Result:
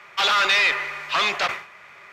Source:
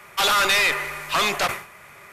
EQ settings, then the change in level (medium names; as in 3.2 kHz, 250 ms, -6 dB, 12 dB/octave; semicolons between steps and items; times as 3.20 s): distance through air 200 m; tilt EQ +3 dB/octave; 0.0 dB